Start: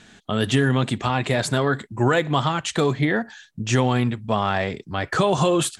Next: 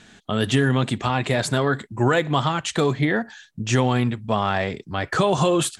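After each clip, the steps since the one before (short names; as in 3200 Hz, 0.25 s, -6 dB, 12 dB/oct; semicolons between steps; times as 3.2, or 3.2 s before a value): nothing audible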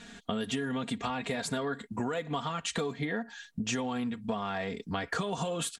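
comb 4.3 ms, depth 68%; compressor 10:1, threshold -28 dBFS, peak gain reduction 15 dB; gain -1.5 dB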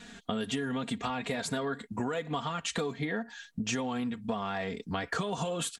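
vibrato 4 Hz 30 cents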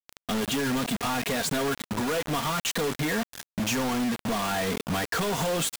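companded quantiser 2-bit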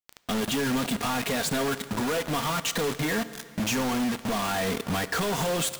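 plate-style reverb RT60 2.3 s, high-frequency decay 0.95×, DRR 13.5 dB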